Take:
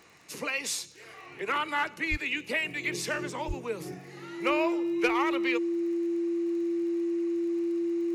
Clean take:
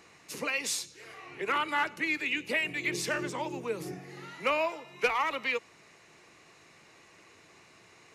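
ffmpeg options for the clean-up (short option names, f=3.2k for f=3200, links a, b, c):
-filter_complex "[0:a]adeclick=t=4,bandreject=f=340:w=30,asplit=3[a][b][c];[a]afade=t=out:st=2.1:d=0.02[d];[b]highpass=f=140:w=0.5412,highpass=f=140:w=1.3066,afade=t=in:st=2.1:d=0.02,afade=t=out:st=2.22:d=0.02[e];[c]afade=t=in:st=2.22:d=0.02[f];[d][e][f]amix=inputs=3:normalize=0,asplit=3[g][h][i];[g]afade=t=out:st=3.47:d=0.02[j];[h]highpass=f=140:w=0.5412,highpass=f=140:w=1.3066,afade=t=in:st=3.47:d=0.02,afade=t=out:st=3.59:d=0.02[k];[i]afade=t=in:st=3.59:d=0.02[l];[j][k][l]amix=inputs=3:normalize=0"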